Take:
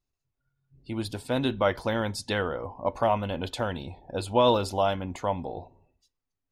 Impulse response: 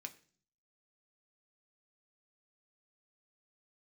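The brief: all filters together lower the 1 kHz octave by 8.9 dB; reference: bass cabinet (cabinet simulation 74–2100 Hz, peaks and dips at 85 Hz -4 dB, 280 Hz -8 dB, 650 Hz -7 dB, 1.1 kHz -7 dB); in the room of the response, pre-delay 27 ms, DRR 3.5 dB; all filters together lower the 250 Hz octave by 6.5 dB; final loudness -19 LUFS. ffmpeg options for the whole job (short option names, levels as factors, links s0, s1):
-filter_complex "[0:a]equalizer=f=250:t=o:g=-4,equalizer=f=1000:t=o:g=-6,asplit=2[s0][s1];[1:a]atrim=start_sample=2205,adelay=27[s2];[s1][s2]afir=irnorm=-1:irlink=0,volume=1.06[s3];[s0][s3]amix=inputs=2:normalize=0,highpass=f=74:w=0.5412,highpass=f=74:w=1.3066,equalizer=f=85:t=q:w=4:g=-4,equalizer=f=280:t=q:w=4:g=-8,equalizer=f=650:t=q:w=4:g=-7,equalizer=f=1100:t=q:w=4:g=-7,lowpass=f=2100:w=0.5412,lowpass=f=2100:w=1.3066,volume=5.31"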